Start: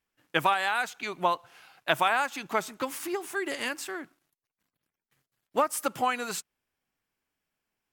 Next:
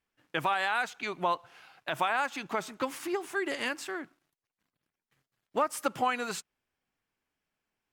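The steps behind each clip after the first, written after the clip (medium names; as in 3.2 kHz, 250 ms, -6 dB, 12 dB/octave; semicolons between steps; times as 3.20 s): treble shelf 8.2 kHz -10.5 dB; peak limiter -17.5 dBFS, peak gain reduction 9.5 dB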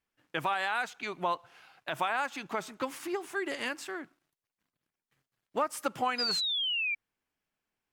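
painted sound fall, 6.18–6.95 s, 2.3–5 kHz -29 dBFS; trim -2 dB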